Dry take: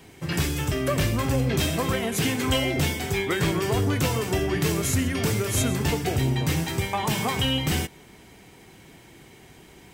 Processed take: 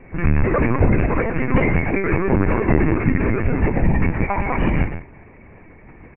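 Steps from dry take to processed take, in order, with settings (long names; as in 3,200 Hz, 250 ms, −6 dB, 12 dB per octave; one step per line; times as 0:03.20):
Butterworth low-pass 2,500 Hz 96 dB per octave
parametric band 68 Hz +13 dB 0.38 octaves
phase-vocoder stretch with locked phases 0.62×
on a send: single-tap delay 137 ms −10.5 dB
on the sum: linear-prediction vocoder at 8 kHz pitch kept
level +6 dB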